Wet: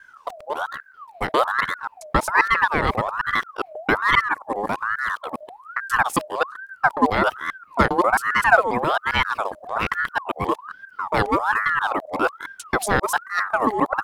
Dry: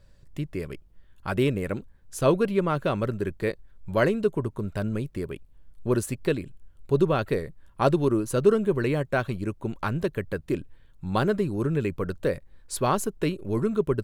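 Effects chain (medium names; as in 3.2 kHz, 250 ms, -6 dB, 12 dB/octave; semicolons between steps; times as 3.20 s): time reversed locally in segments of 134 ms; ring modulator with a swept carrier 1.1 kHz, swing 45%, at 1.2 Hz; trim +7 dB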